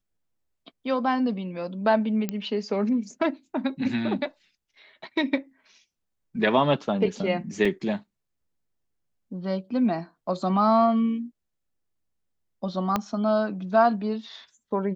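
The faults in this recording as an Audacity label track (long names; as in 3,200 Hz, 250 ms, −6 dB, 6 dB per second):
2.290000	2.290000	click −14 dBFS
7.650000	7.650000	drop-out 3.9 ms
12.960000	12.960000	click −10 dBFS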